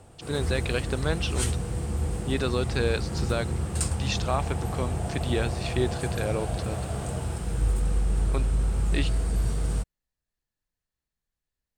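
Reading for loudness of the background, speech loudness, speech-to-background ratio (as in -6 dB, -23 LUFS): -29.5 LUFS, -32.0 LUFS, -2.5 dB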